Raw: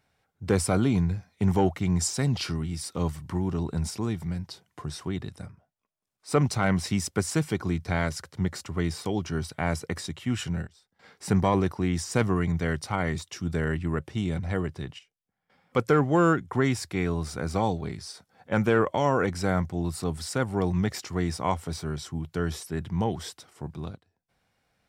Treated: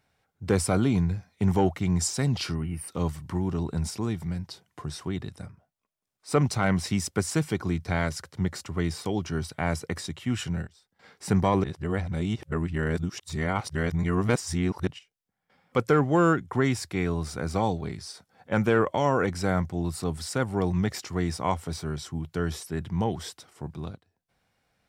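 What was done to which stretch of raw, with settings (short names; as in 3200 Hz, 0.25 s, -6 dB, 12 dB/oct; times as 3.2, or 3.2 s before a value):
2.55–2.88 spectral gain 3100–8400 Hz -21 dB
11.64–14.87 reverse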